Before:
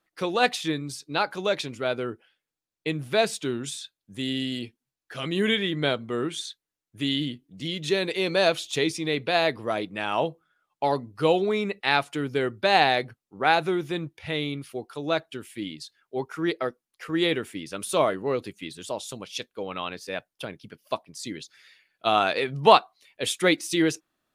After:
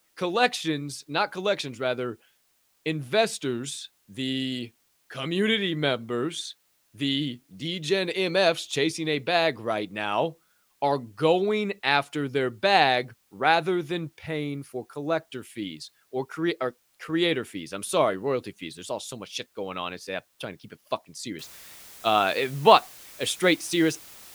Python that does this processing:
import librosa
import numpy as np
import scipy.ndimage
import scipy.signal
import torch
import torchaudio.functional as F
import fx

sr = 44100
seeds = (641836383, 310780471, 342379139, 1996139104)

y = fx.peak_eq(x, sr, hz=3300.0, db=-11.0, octaves=0.92, at=(14.26, 15.27))
y = fx.noise_floor_step(y, sr, seeds[0], at_s=21.39, before_db=-68, after_db=-47, tilt_db=0.0)